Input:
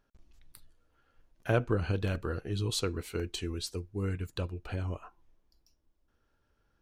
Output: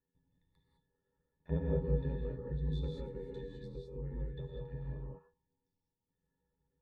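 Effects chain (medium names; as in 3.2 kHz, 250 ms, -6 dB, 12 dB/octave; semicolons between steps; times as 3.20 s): pitch-class resonator A, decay 0.17 s; ring modulator 44 Hz; gated-style reverb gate 230 ms rising, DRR -2 dB; trim +2.5 dB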